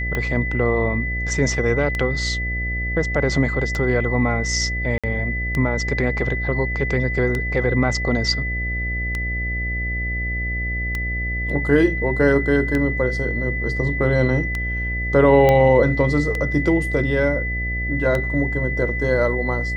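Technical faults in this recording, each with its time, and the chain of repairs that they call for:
buzz 60 Hz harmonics 12 -26 dBFS
tick 33 1/3 rpm -11 dBFS
tone 2000 Hz -25 dBFS
4.98–5.04 gap 56 ms
15.49 pop -6 dBFS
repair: de-click; de-hum 60 Hz, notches 12; notch 2000 Hz, Q 30; interpolate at 4.98, 56 ms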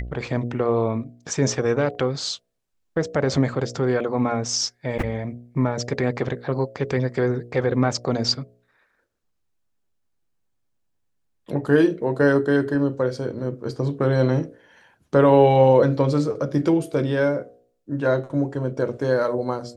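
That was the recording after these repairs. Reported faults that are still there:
none

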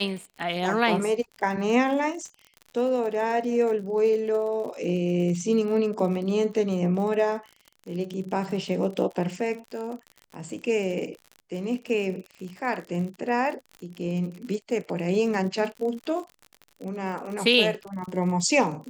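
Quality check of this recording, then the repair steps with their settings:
crackle 56/s -34 dBFS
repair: de-click

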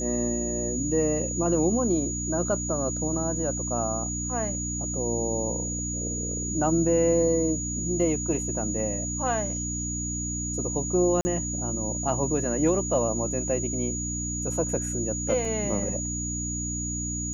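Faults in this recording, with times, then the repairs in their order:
hum 60 Hz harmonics 5 -33 dBFS
tone 6800 Hz -31 dBFS
11.21–11.25 gap 40 ms
15.45 gap 2.6 ms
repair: de-hum 60 Hz, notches 5; notch 6800 Hz, Q 30; interpolate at 11.21, 40 ms; interpolate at 15.45, 2.6 ms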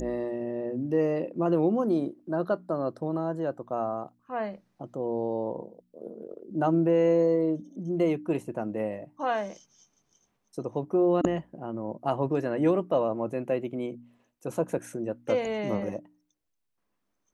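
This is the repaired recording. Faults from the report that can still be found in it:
none

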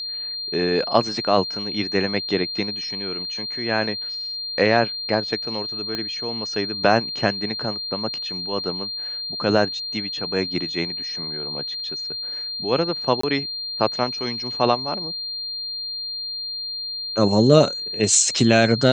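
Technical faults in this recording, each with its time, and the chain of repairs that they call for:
tone 4200 Hz -27 dBFS
5.95 pop -13 dBFS
13.21–13.23 gap 24 ms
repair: de-click; notch 4200 Hz, Q 30; interpolate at 13.21, 24 ms

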